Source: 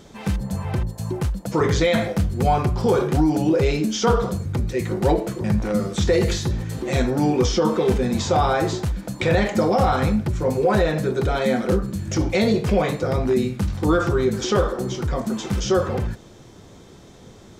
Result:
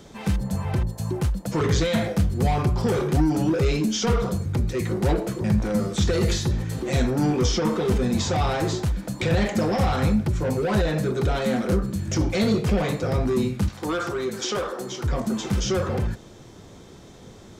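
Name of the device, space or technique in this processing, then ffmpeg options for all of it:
one-band saturation: -filter_complex "[0:a]asettb=1/sr,asplit=3[a][b][c];[a]atrim=end=13.684[d];[b]atrim=start=13.68:end=15.04,asetpts=PTS-STARTPTS,afade=t=in:d=0.004:c=qsin,afade=t=out:st=1.356:d=0.004:c=qsin,highpass=f=560:p=1[e];[c]atrim=start=15.036[f];[d][e]acrossfade=d=0.004:c1=hsin:c2=qsin[g];[g][f]acrossfade=d=0.004:c1=qsin:c2=hsin,acrossover=split=260|3500[h][i][j];[i]asoftclip=type=tanh:threshold=-23.5dB[k];[h][k][j]amix=inputs=3:normalize=0"

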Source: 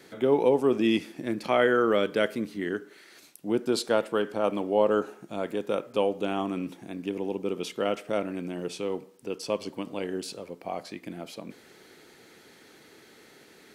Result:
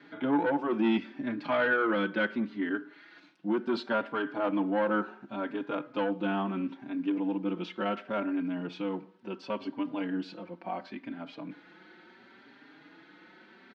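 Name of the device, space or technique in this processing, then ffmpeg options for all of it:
barber-pole flanger into a guitar amplifier: -filter_complex "[0:a]asplit=2[a][b];[b]adelay=4.5,afreqshift=0.71[c];[a][c]amix=inputs=2:normalize=1,asoftclip=type=tanh:threshold=-21.5dB,highpass=99,equalizer=f=100:t=q:w=4:g=-10,equalizer=f=190:t=q:w=4:g=4,equalizer=f=290:t=q:w=4:g=8,equalizer=f=440:t=q:w=4:g=-8,equalizer=f=940:t=q:w=4:g=6,equalizer=f=1.5k:t=q:w=4:g=8,lowpass=f=3.8k:w=0.5412,lowpass=f=3.8k:w=1.3066"

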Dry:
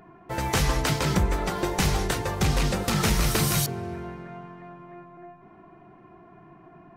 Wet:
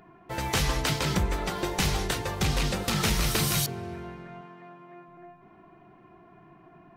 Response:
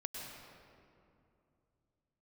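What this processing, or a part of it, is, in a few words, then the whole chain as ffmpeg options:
presence and air boost: -filter_complex "[0:a]equalizer=f=3.4k:t=o:w=1.4:g=4.5,highshelf=f=11k:g=3,asettb=1/sr,asplit=3[a][b][c];[a]atrim=end=4.414[d];[b]atrim=start=4.41:end=5.08,asetpts=PTS-STARTPTS,afade=t=in:d=0.004:c=qsin,afade=t=out:st=0.666:d=0.004:c=qsin,highpass=180[e];[c]atrim=start=5.076[f];[d][e]acrossfade=d=0.004:c1=hsin:c2=qsin[g];[g][f]acrossfade=d=0.004:c1=qsin:c2=hsin,volume=-3.5dB"

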